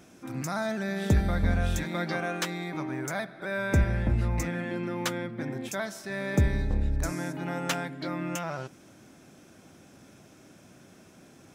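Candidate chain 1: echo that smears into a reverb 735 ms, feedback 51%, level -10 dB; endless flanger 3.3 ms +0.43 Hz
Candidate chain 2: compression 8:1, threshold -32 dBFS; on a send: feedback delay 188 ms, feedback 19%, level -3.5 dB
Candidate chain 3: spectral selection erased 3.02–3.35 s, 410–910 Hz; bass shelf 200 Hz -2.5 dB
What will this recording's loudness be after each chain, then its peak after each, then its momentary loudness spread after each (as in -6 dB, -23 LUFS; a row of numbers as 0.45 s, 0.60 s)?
-33.0 LUFS, -35.5 LUFS, -31.5 LUFS; -14.5 dBFS, -19.0 dBFS, -13.0 dBFS; 16 LU, 18 LU, 8 LU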